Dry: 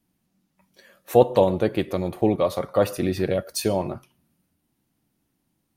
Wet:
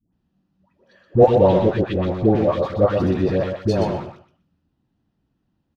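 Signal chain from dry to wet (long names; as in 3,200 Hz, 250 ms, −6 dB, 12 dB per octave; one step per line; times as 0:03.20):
high-pass filter 40 Hz 12 dB per octave
low-shelf EQ 90 Hz +12 dB
notch filter 2,200 Hz, Q 6.4
in parallel at −7 dB: centre clipping without the shift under −20.5 dBFS
on the sum: high-frequency loss of the air 200 metres
all-pass dispersion highs, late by 131 ms, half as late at 830 Hz
on a send: repeating echo 124 ms, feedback 18%, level −6 dB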